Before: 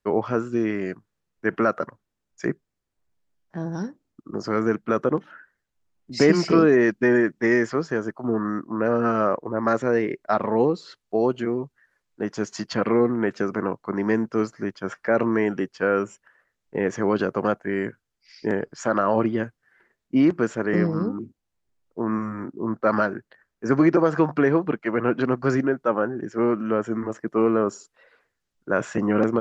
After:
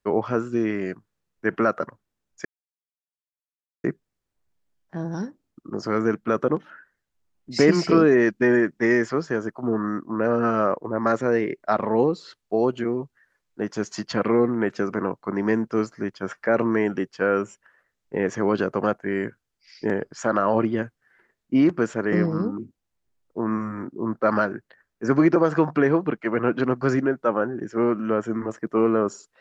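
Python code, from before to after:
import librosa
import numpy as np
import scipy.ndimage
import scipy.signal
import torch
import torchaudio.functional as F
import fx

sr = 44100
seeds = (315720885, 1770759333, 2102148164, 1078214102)

y = fx.edit(x, sr, fx.insert_silence(at_s=2.45, length_s=1.39), tone=tone)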